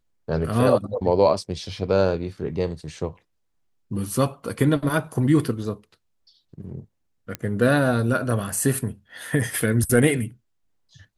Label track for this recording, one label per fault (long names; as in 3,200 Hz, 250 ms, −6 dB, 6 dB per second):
7.350000	7.350000	click −13 dBFS